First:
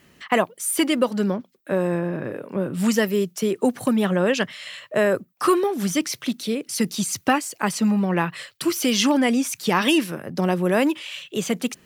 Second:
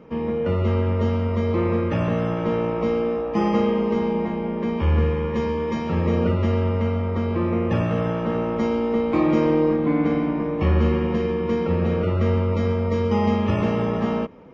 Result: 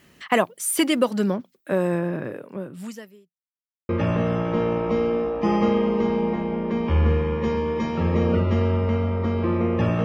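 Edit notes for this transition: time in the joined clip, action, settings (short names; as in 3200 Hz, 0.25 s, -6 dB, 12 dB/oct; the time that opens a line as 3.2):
first
2.17–3.4 fade out quadratic
3.4–3.89 mute
3.89 switch to second from 1.81 s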